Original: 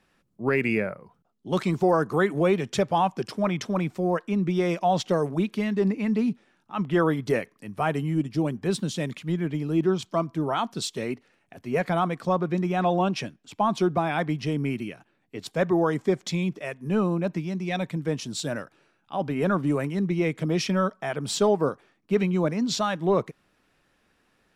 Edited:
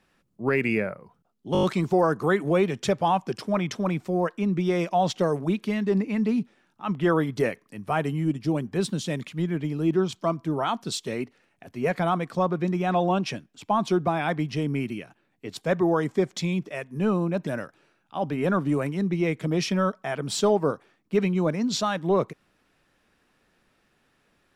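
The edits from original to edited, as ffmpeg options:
-filter_complex "[0:a]asplit=7[a][b][c][d][e][f][g];[a]atrim=end=1.552[h];[b]atrim=start=1.528:end=1.552[i];[c]atrim=start=1.528:end=1.552[j];[d]atrim=start=1.528:end=1.552[k];[e]atrim=start=1.528:end=1.552[l];[f]atrim=start=1.528:end=17.372[m];[g]atrim=start=18.448[n];[h][i]acrossfade=d=0.004:c1=hsin:c2=hsin[o];[o][j]acrossfade=d=0.004:c1=hsin:c2=hsin[p];[p][k]acrossfade=d=0.004:c1=hsin:c2=hsin[q];[q][l]acrossfade=d=0.004:c1=hsin:c2=hsin[r];[r][m]acrossfade=d=0.004:c1=hsin:c2=hsin[s];[s][n]acrossfade=d=0.004:c1=hsin:c2=hsin"

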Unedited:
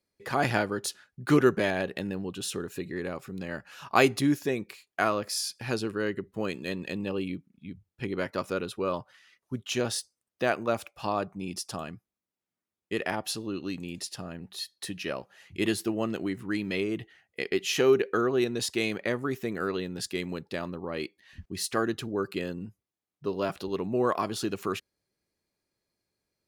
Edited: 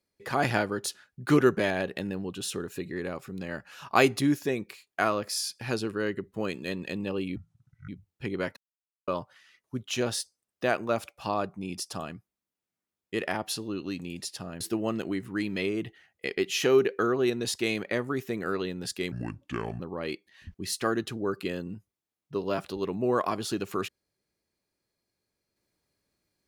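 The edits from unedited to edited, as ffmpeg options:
-filter_complex "[0:a]asplit=8[a][b][c][d][e][f][g][h];[a]atrim=end=7.364[i];[b]atrim=start=7.36:end=7.67,asetpts=PTS-STARTPTS,asetrate=26019,aresample=44100,atrim=end_sample=23171,asetpts=PTS-STARTPTS[j];[c]atrim=start=7.666:end=8.35,asetpts=PTS-STARTPTS,afade=t=out:st=0.68:d=0.004:c=hsin[k];[d]atrim=start=8.35:end=8.86,asetpts=PTS-STARTPTS,volume=0[l];[e]atrim=start=8.86:end=14.392,asetpts=PTS-STARTPTS,afade=t=in:d=0.004:c=hsin[m];[f]atrim=start=15.748:end=20.264[n];[g]atrim=start=20.26:end=20.71,asetpts=PTS-STARTPTS,asetrate=29106,aresample=44100,atrim=end_sample=30068,asetpts=PTS-STARTPTS[o];[h]atrim=start=20.706[p];[i][j]acrossfade=d=0.004:c1=hsin:c2=hsin[q];[k][l][m]concat=n=3:v=0:a=1[r];[q][r]acrossfade=d=0.004:c1=hsin:c2=hsin[s];[s][n]acrossfade=d=0.004:c1=hsin:c2=hsin[t];[t][o]acrossfade=d=0.004:c1=hsin:c2=hsin[u];[u][p]acrossfade=d=0.004:c1=hsin:c2=hsin"

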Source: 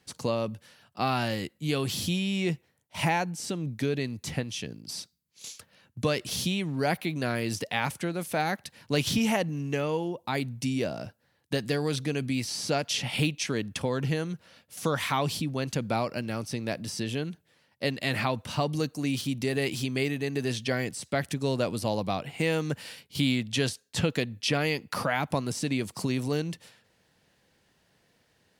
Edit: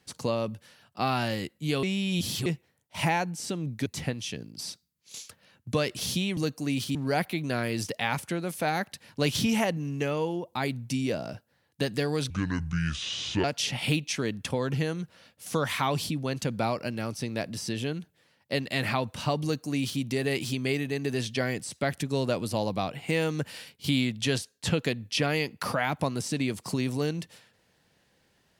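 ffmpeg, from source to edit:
-filter_complex "[0:a]asplit=8[a][b][c][d][e][f][g][h];[a]atrim=end=1.832[i];[b]atrim=start=1.828:end=2.462,asetpts=PTS-STARTPTS,areverse[j];[c]atrim=start=2.458:end=3.862[k];[d]atrim=start=4.158:end=6.672[l];[e]atrim=start=18.738:end=19.322[m];[f]atrim=start=6.668:end=12.024[n];[g]atrim=start=12.02:end=12.75,asetpts=PTS-STARTPTS,asetrate=28224,aresample=44100[o];[h]atrim=start=12.746[p];[i][j]acrossfade=d=0.004:c1=hsin:c2=hsin[q];[q][k]acrossfade=d=0.004:c1=hsin:c2=hsin[r];[r][l]acrossfade=d=0.004:c1=hsin:c2=hsin[s];[s][m]acrossfade=d=0.004:c1=hsin:c2=hsin[t];[t][n]acrossfade=d=0.004:c1=hsin:c2=hsin[u];[u][o]acrossfade=d=0.004:c1=hsin:c2=hsin[v];[v][p]acrossfade=d=0.004:c1=hsin:c2=hsin"

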